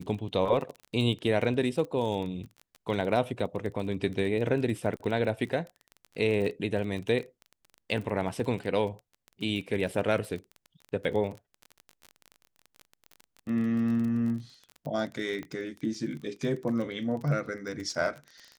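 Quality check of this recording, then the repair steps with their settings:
crackle 28/s -35 dBFS
15.43 pop -26 dBFS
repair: de-click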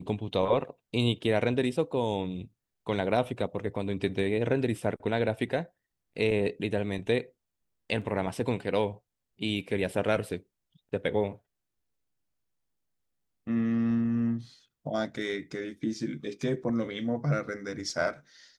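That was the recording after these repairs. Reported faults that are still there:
15.43 pop

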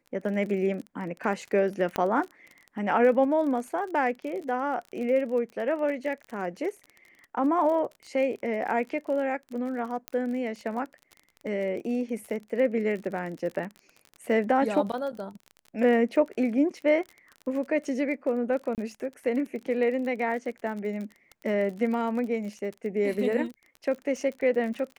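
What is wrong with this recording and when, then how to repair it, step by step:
crackle 36/s -35 dBFS
1.96 pop -14 dBFS
10.08 pop -16 dBFS
18.75–18.78 gap 28 ms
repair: de-click; interpolate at 18.75, 28 ms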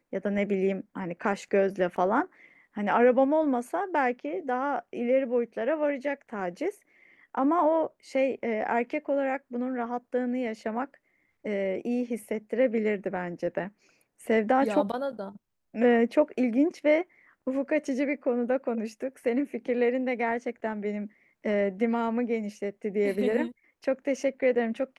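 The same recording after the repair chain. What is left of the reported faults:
1.96 pop

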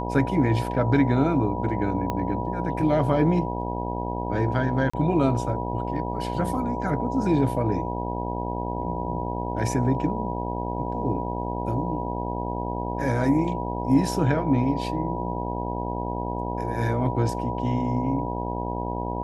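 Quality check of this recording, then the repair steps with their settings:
buzz 60 Hz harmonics 16 -30 dBFS
tone 970 Hz -32 dBFS
2.1 pop -14 dBFS
4.9–4.93 gap 35 ms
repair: de-click; notch 970 Hz, Q 30; de-hum 60 Hz, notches 16; interpolate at 4.9, 35 ms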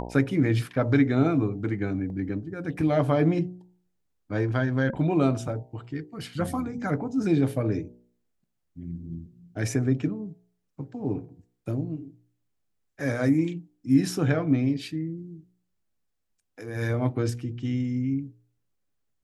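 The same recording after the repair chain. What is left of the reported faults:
2.1 pop

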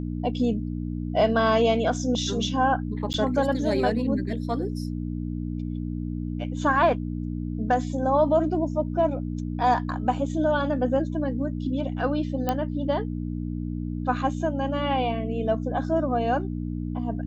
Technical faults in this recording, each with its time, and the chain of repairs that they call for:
hum 60 Hz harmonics 5 -30 dBFS
3.13–3.14 gap 9.8 ms
12.49 pop -11 dBFS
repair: de-click; de-hum 60 Hz, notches 5; interpolate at 3.13, 9.8 ms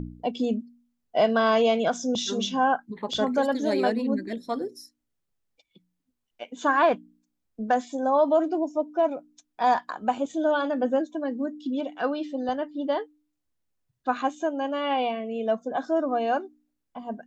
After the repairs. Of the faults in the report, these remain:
12.49 pop

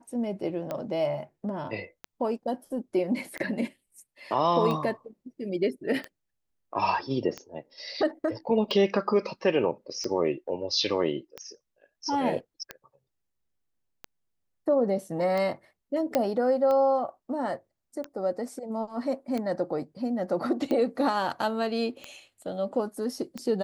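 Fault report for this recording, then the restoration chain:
tick 45 rpm -19 dBFS
16.15 pop -11 dBFS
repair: de-click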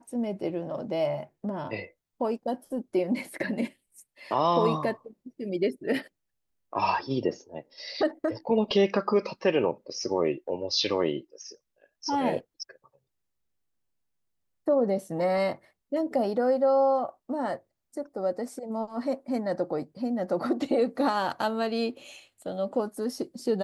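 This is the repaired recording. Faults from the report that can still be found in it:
none

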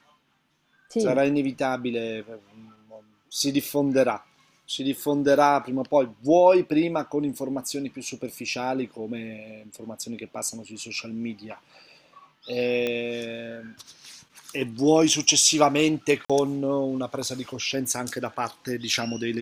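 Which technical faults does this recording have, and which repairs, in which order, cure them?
12.87 pop -14 dBFS
16.25–16.3 gap 46 ms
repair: de-click; interpolate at 16.25, 46 ms

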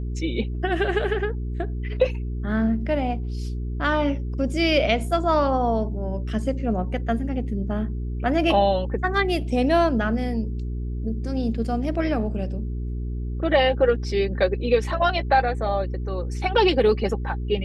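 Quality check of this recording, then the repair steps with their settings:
hum 60 Hz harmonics 7 -28 dBFS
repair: de-hum 60 Hz, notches 7

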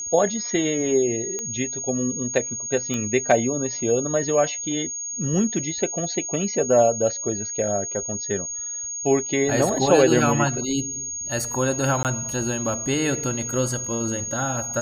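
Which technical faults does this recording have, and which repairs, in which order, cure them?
tone 6600 Hz -28 dBFS
1.39 pop -16 dBFS
2.94 pop -13 dBFS
12.03–12.05 gap 18 ms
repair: de-click; notch 6600 Hz, Q 30; interpolate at 12.03, 18 ms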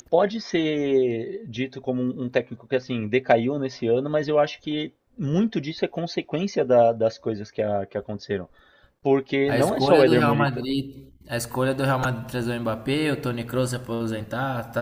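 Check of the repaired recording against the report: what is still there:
tone 6600 Hz
2.94 pop

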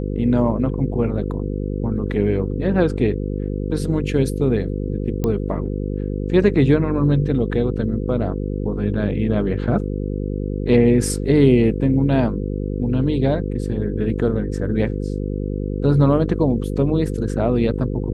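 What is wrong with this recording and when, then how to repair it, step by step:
buzz 50 Hz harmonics 10 -24 dBFS
5.24 pop -10 dBFS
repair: de-click; de-hum 50 Hz, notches 10

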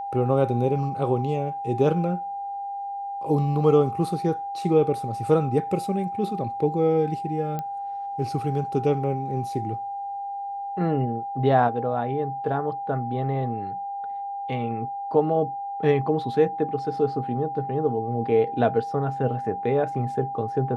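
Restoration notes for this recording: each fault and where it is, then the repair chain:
tone 800 Hz -29 dBFS
7.59 pop -18 dBFS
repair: de-click; notch 800 Hz, Q 30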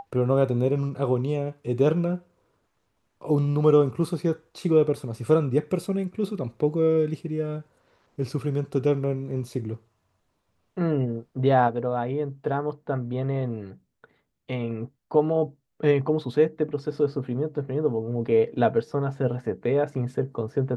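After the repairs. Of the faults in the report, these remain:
none

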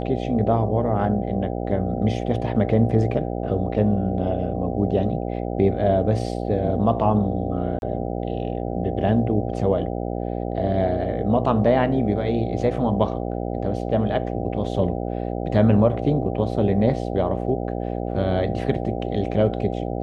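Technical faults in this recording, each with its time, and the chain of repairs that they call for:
buzz 60 Hz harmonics 13 -27 dBFS
7.79–7.82 gap 31 ms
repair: de-hum 60 Hz, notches 13; interpolate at 7.79, 31 ms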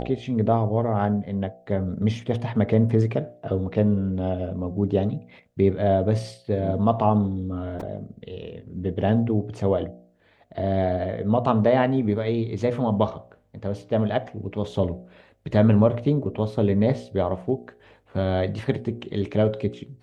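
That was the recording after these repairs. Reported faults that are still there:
none

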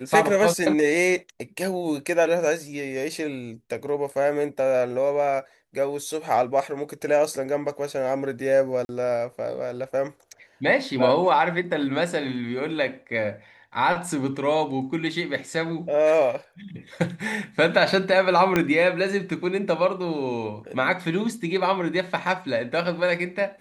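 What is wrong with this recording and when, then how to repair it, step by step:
8.85–8.89 gap 41 ms
18.56 pop -7 dBFS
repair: de-click; interpolate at 8.85, 41 ms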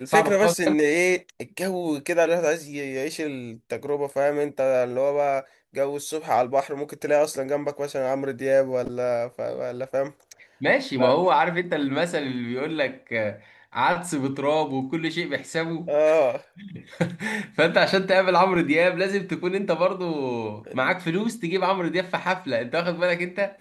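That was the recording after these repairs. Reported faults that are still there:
18.56 pop

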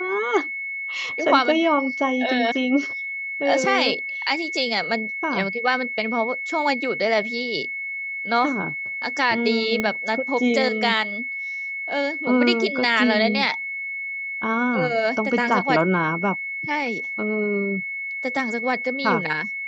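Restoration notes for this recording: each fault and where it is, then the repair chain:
tone 2200 Hz -27 dBFS
9.8 pop -10 dBFS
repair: de-click; notch 2200 Hz, Q 30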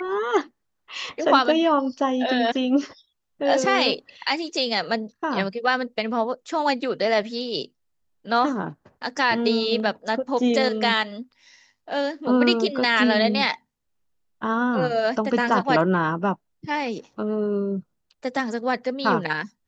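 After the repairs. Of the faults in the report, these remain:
9.8 pop

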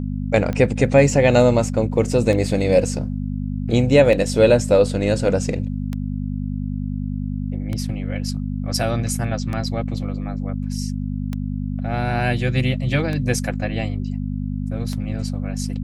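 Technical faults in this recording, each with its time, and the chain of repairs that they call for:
hum 50 Hz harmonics 5 -25 dBFS
tick 33 1/3 rpm -14 dBFS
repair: de-click; de-hum 50 Hz, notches 5

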